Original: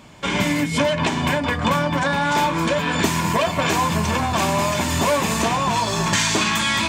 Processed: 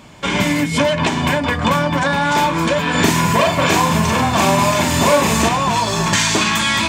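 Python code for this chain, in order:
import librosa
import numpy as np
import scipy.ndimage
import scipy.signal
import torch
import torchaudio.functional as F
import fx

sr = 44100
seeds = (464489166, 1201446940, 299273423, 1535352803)

y = fx.doubler(x, sr, ms=41.0, db=-3, at=(2.9, 5.49))
y = y * librosa.db_to_amplitude(3.5)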